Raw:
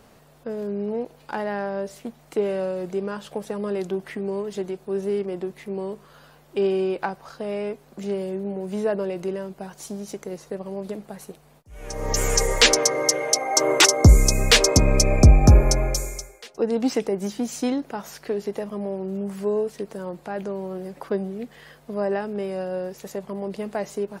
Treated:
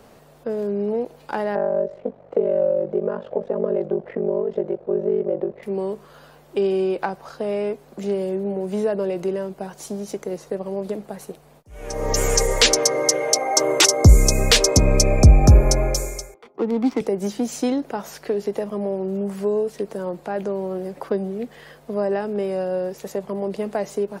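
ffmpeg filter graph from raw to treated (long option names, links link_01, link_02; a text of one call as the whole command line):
ffmpeg -i in.wav -filter_complex "[0:a]asettb=1/sr,asplit=3[link_01][link_02][link_03];[link_01]atrim=end=1.554[link_04];[link_02]atrim=start=1.55:end=5.63,asetpts=PTS-STARTPTS,afade=type=in:duration=0.004:curve=qsin,afade=type=out:start_time=4.076:duration=0.004:curve=qsin,lowpass=1800,equalizer=frequency=530:width_type=o:width=0.59:gain=15,aeval=exprs='val(0)*sin(2*PI*24*n/s)':channel_layout=same[link_05];[link_03]atrim=start=5.626[link_06];[link_04][link_05]acrossfade=duration=0.004:curve1=hsin:curve2=qsin[link_07];[link_07][link_06]acrossfade=duration=0.004:curve1=qsin:curve2=hsin,asettb=1/sr,asplit=3[link_08][link_09][link_10];[link_08]atrim=end=16.344[link_11];[link_09]atrim=start=16.34:end=17.01,asetpts=PTS-STARTPTS,afade=type=in:duration=0.004:curve=qsin,afade=type=out:start_time=0.666:duration=0.004:curve=qsin,highpass=frequency=180:width=0.5412,highpass=frequency=180:width=1.3066,aecho=1:1:0.9:0.61,atrim=end_sample=29547,adynamicsmooth=sensitivity=4.5:basefreq=600[link_12];[link_10]atrim=start=17.006[link_13];[link_11][link_12]acrossfade=duration=0.004:curve1=hsin:curve2=qsin[link_14];[link_14][link_13]acrossfade=duration=0.004:curve1=qsin:curve2=hsin,equalizer=frequency=500:width=0.77:gain=4.5,acrossover=split=200|3000[link_15][link_16][link_17];[link_16]acompressor=threshold=-22dB:ratio=2.5[link_18];[link_15][link_18][link_17]amix=inputs=3:normalize=0,volume=1.5dB" out.wav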